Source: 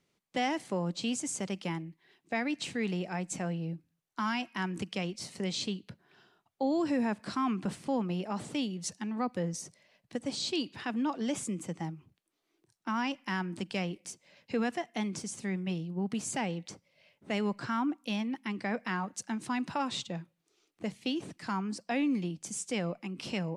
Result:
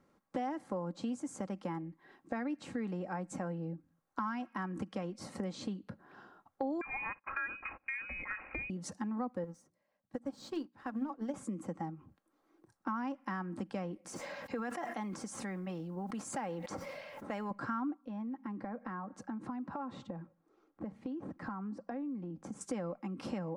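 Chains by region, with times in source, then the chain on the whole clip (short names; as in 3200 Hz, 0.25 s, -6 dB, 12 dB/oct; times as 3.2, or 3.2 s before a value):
6.81–8.7 gate -47 dBFS, range -25 dB + inverted band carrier 2700 Hz
9.44–11.34 G.711 law mismatch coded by mu + notches 60/120/180/240/300/360 Hz + upward expander 2.5:1, over -46 dBFS
14.08–17.51 low shelf 430 Hz -11 dB + modulation noise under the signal 32 dB + sustainer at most 25 dB/s
18.01–22.61 LPF 1300 Hz 6 dB/oct + compressor 3:1, threshold -44 dBFS
whole clip: resonant high shelf 1900 Hz -12 dB, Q 1.5; comb 3.7 ms, depth 43%; compressor 3:1, threshold -47 dBFS; gain +7.5 dB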